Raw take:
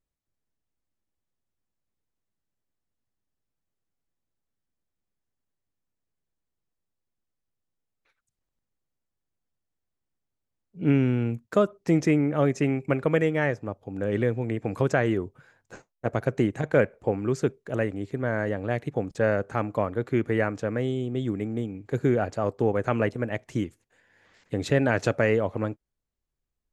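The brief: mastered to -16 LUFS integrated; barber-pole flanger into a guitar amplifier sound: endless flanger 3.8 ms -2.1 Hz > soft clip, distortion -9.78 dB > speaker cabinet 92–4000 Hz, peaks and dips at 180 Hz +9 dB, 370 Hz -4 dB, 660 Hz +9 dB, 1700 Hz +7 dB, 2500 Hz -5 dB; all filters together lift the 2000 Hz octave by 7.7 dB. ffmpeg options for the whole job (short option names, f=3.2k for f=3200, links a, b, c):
-filter_complex "[0:a]equalizer=f=2k:t=o:g=4.5,asplit=2[a][b];[b]adelay=3.8,afreqshift=-2.1[c];[a][c]amix=inputs=2:normalize=1,asoftclip=threshold=-24dB,highpass=92,equalizer=f=180:t=q:w=4:g=9,equalizer=f=370:t=q:w=4:g=-4,equalizer=f=660:t=q:w=4:g=9,equalizer=f=1.7k:t=q:w=4:g=7,equalizer=f=2.5k:t=q:w=4:g=-5,lowpass=f=4k:w=0.5412,lowpass=f=4k:w=1.3066,volume=14dB"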